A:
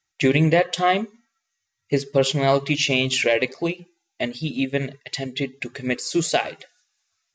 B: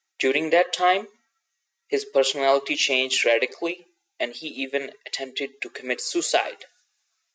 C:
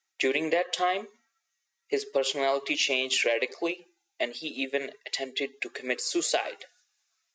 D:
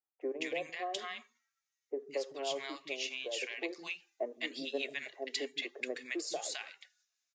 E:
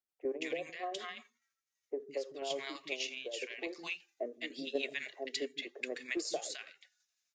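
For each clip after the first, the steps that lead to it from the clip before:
high-pass 350 Hz 24 dB/octave
compression, threshold -20 dBFS, peak gain reduction 7 dB; trim -2 dB
three bands offset in time mids, lows, highs 160/210 ms, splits 230/1000 Hz; gain riding within 5 dB 0.5 s; trim -8.5 dB
tremolo saw down 12 Hz, depth 40%; rotary cabinet horn 5.5 Hz, later 0.9 Hz, at 1.07 s; trim +3.5 dB

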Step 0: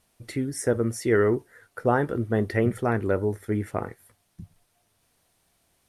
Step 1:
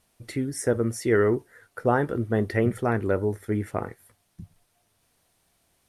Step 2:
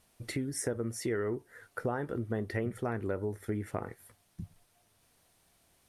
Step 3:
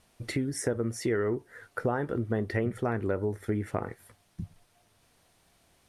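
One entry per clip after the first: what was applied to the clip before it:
no audible change
compression 4:1, threshold -32 dBFS, peak gain reduction 13 dB
treble shelf 9.9 kHz -10 dB; trim +4.5 dB

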